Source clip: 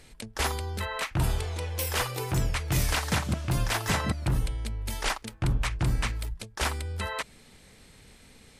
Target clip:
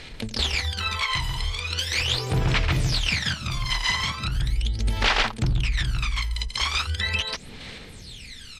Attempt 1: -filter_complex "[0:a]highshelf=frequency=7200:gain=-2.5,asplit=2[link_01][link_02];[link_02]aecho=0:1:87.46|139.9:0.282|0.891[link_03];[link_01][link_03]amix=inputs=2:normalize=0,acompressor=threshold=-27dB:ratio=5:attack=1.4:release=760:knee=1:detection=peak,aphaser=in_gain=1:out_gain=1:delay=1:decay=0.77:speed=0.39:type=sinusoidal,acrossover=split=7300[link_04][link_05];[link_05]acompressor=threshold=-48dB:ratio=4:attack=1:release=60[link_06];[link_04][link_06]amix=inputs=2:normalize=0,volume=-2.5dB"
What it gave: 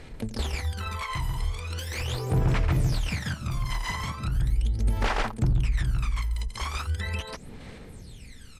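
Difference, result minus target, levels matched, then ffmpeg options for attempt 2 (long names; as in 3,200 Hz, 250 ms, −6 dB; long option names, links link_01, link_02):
4,000 Hz band −9.0 dB
-filter_complex "[0:a]highshelf=frequency=7200:gain=-2.5,asplit=2[link_01][link_02];[link_02]aecho=0:1:87.46|139.9:0.282|0.891[link_03];[link_01][link_03]amix=inputs=2:normalize=0,acompressor=threshold=-27dB:ratio=5:attack=1.4:release=760:knee=1:detection=peak,equalizer=frequency=3700:width_type=o:width=2.2:gain=14.5,aphaser=in_gain=1:out_gain=1:delay=1:decay=0.77:speed=0.39:type=sinusoidal,acrossover=split=7300[link_04][link_05];[link_05]acompressor=threshold=-48dB:ratio=4:attack=1:release=60[link_06];[link_04][link_06]amix=inputs=2:normalize=0,volume=-2.5dB"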